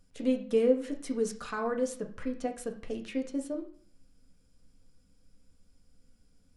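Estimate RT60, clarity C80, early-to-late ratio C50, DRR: 0.50 s, 15.0 dB, 11.0 dB, 2.0 dB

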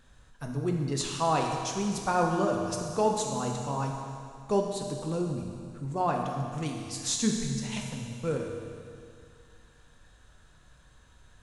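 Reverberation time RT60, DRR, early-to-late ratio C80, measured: 2.3 s, 1.0 dB, 4.0 dB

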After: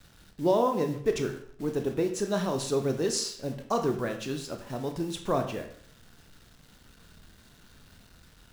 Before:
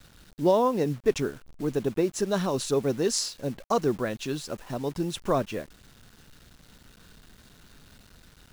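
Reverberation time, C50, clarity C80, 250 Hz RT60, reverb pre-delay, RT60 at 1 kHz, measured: 0.60 s, 8.5 dB, 11.5 dB, 0.60 s, 24 ms, 0.60 s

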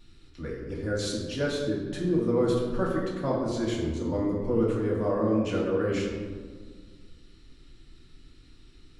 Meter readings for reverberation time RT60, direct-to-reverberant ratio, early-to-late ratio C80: 1.7 s, -5.5 dB, 4.5 dB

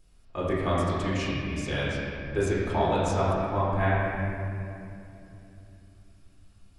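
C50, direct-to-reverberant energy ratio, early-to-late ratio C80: -2.5 dB, -9.0 dB, -1.0 dB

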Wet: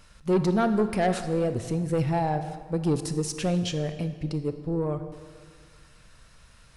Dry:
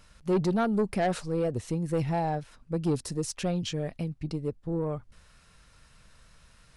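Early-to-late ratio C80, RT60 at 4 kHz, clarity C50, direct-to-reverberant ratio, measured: 11.0 dB, 1.4 s, 10.0 dB, 9.0 dB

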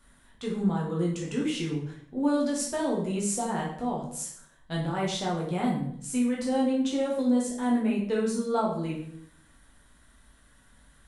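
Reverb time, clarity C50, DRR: 0.65 s, 4.5 dB, -4.0 dB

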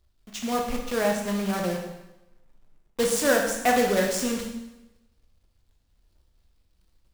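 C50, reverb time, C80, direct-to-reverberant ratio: 4.5 dB, 0.95 s, 7.0 dB, 0.5 dB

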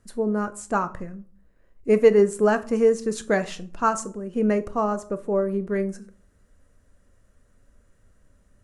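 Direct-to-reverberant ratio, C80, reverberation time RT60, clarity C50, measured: 11.0 dB, 22.0 dB, 0.45 s, 18.0 dB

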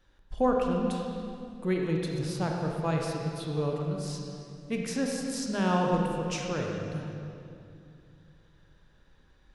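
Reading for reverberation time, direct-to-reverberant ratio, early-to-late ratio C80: 2.6 s, 0.0 dB, 2.0 dB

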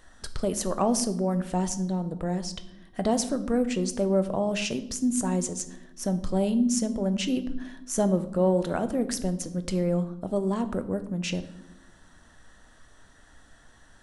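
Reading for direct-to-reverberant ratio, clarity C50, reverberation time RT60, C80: 9.5 dB, 14.0 dB, 0.95 s, 17.0 dB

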